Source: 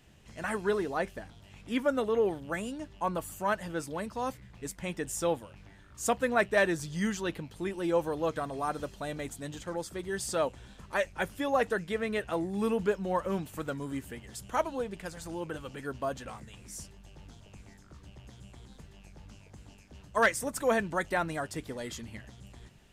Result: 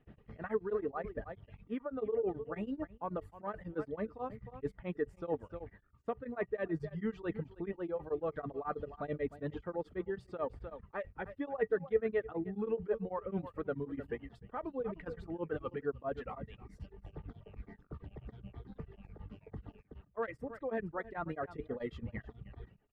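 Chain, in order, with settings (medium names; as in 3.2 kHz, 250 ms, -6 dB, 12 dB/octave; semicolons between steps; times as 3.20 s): reverb removal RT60 1.2 s; in parallel at 0 dB: peak limiter -23.5 dBFS, peak gain reduction 9 dB; on the sum: delay 305 ms -18.5 dB; reverse; compression 4:1, threshold -35 dBFS, peak gain reduction 15 dB; reverse; distance through air 440 m; band-stop 990 Hz, Q 21; small resonant body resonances 440/1200/1900 Hz, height 10 dB, ringing for 85 ms; gate -54 dBFS, range -12 dB; treble shelf 2.3 kHz -9 dB; tremolo of two beating tones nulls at 9.2 Hz; trim +2 dB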